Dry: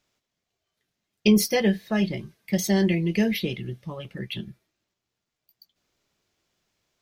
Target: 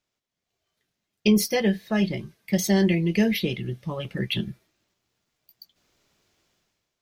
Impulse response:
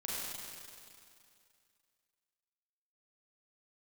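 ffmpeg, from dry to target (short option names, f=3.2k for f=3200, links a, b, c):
-af "dynaudnorm=f=100:g=11:m=14dB,volume=-7.5dB"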